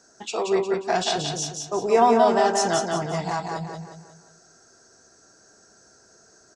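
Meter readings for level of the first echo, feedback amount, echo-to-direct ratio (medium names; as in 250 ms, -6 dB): -4.0 dB, 41%, -3.0 dB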